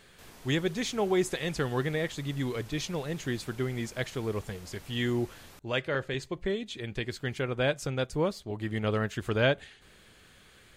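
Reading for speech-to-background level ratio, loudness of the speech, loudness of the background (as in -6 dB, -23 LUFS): 20.0 dB, -31.5 LUFS, -51.5 LUFS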